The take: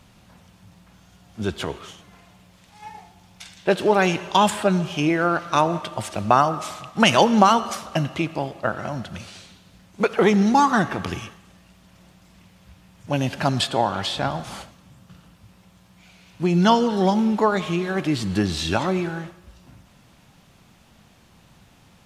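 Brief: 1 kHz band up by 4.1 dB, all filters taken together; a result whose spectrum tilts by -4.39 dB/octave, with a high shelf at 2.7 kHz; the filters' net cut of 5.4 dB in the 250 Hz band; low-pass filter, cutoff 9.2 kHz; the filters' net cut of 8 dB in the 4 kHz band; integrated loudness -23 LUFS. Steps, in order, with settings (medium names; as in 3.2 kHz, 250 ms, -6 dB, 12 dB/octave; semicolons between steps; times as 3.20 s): low-pass 9.2 kHz; peaking EQ 250 Hz -8 dB; peaking EQ 1 kHz +6.5 dB; treble shelf 2.7 kHz -4 dB; peaking EQ 4 kHz -8.5 dB; trim -2.5 dB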